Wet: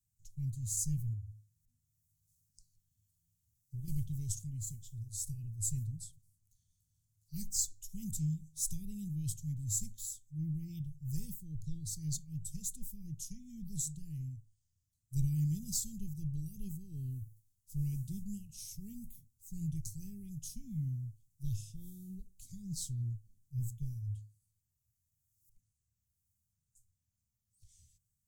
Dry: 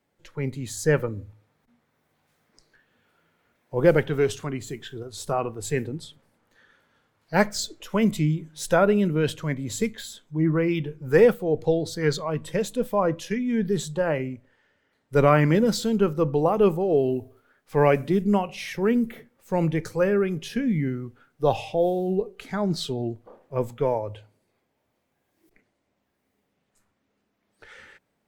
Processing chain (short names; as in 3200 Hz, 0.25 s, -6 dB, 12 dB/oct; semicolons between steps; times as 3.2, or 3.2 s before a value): elliptic band-stop 110–6800 Hz, stop band 70 dB; 1.13–3.88 compressor 6:1, threshold -40 dBFS, peak gain reduction 9.5 dB; gain +1 dB